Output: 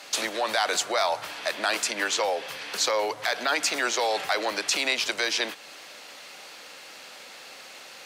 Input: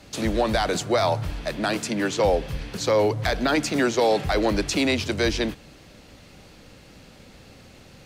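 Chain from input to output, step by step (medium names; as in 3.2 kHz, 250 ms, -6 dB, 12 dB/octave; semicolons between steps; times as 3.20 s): in parallel at 0 dB: compression, threshold -34 dBFS, peak gain reduction 16.5 dB; on the sum: peak limiter -14.5 dBFS, peak gain reduction 5.5 dB; high-pass 790 Hz 12 dB/octave; trim +3 dB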